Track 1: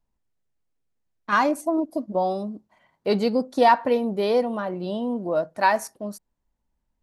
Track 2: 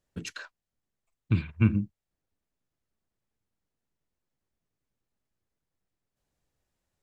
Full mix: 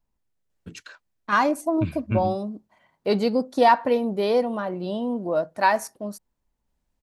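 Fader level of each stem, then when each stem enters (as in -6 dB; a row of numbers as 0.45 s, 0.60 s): 0.0 dB, -3.0 dB; 0.00 s, 0.50 s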